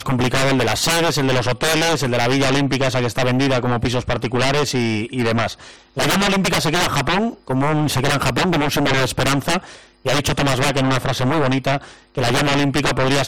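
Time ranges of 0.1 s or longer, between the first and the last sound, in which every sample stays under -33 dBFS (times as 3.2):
5.74–5.97
7.34–7.48
9.79–10.05
11.93–12.15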